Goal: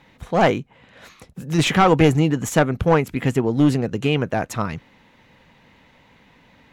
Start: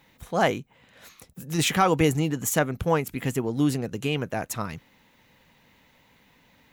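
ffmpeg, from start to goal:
-af "aeval=exprs='clip(val(0),-1,0.1)':c=same,aemphasis=mode=reproduction:type=50fm,volume=7dB"

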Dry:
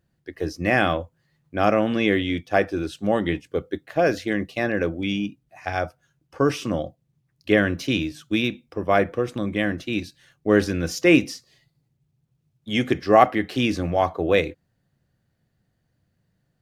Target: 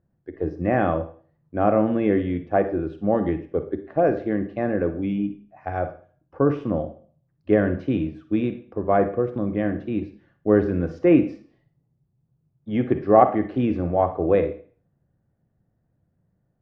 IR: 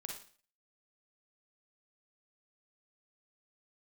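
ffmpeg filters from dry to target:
-filter_complex "[0:a]lowpass=1k,asplit=2[a][b];[1:a]atrim=start_sample=2205[c];[b][c]afir=irnorm=-1:irlink=0,volume=1.5dB[d];[a][d]amix=inputs=2:normalize=0,volume=-3.5dB"

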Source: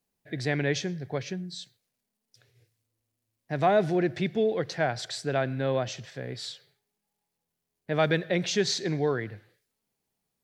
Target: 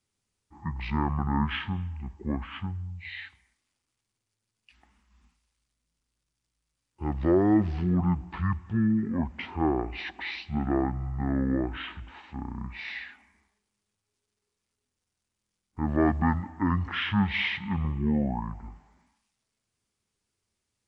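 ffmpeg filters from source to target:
-af "asetrate=22050,aresample=44100"

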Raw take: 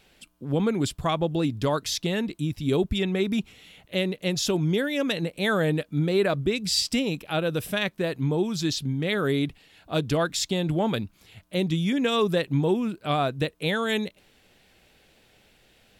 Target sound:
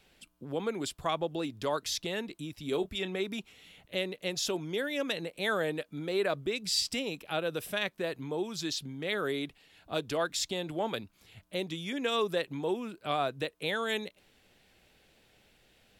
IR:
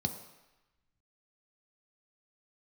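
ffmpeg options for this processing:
-filter_complex "[0:a]acrossover=split=320[a][b];[a]acompressor=threshold=-40dB:ratio=6[c];[c][b]amix=inputs=2:normalize=0,asettb=1/sr,asplit=3[d][e][f];[d]atrim=end=2.694[g];[e]atrim=start=2.69:end=3.16,asetpts=PTS-STARTPTS,afade=t=in:d=0.004:c=qsin,afade=t=out:st=0.466:d=0.004:c=qsin,asplit=2[h][i];[i]adelay=27,volume=-12dB[j];[h][j]amix=inputs=2:normalize=0,atrim=end_sample=20727[k];[f]atrim=start=3.156[l];[g][k]acrossfade=d=0.004:c1=hsin:c2=qsin[m];[m][l]acrossfade=d=0.004:c1=qsin:c2=hsin,volume=-5dB"

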